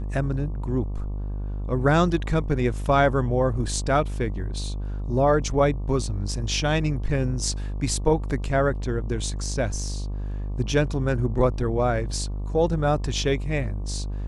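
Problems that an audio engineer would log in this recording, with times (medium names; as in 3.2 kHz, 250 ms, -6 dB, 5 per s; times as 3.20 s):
buzz 50 Hz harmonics 24 -29 dBFS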